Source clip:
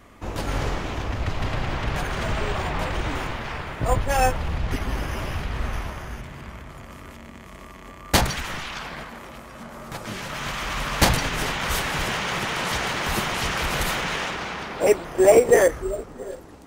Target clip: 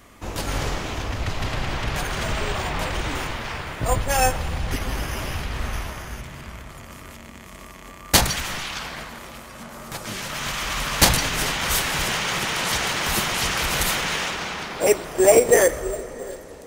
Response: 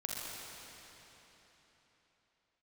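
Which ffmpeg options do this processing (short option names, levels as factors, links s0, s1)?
-filter_complex "[0:a]highshelf=f=3400:g=9,asplit=2[s0][s1];[1:a]atrim=start_sample=2205[s2];[s1][s2]afir=irnorm=-1:irlink=0,volume=0.15[s3];[s0][s3]amix=inputs=2:normalize=0,volume=0.841"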